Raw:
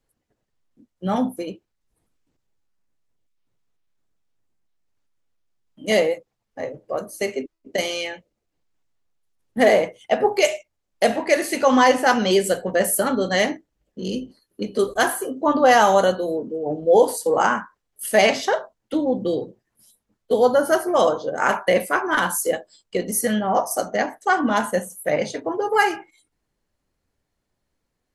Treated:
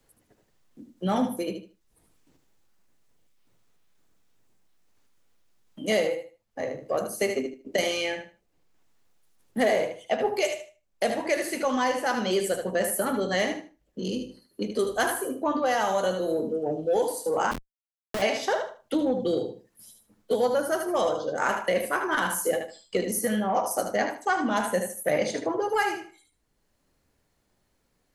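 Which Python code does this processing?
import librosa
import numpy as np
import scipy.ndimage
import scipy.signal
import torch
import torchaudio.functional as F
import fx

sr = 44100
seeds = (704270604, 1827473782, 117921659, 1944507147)

p1 = x + fx.echo_feedback(x, sr, ms=76, feedback_pct=20, wet_db=-8, dry=0)
p2 = fx.rider(p1, sr, range_db=5, speed_s=0.5)
p3 = 10.0 ** (-16.0 / 20.0) * np.tanh(p2 / 10.0 ** (-16.0 / 20.0))
p4 = p2 + (p3 * 10.0 ** (-9.5 / 20.0))
p5 = fx.high_shelf(p4, sr, hz=8300.0, db=3.0)
p6 = fx.schmitt(p5, sr, flips_db=-16.0, at=(17.51, 18.22))
p7 = fx.band_squash(p6, sr, depth_pct=40)
y = p7 * 10.0 ** (-8.5 / 20.0)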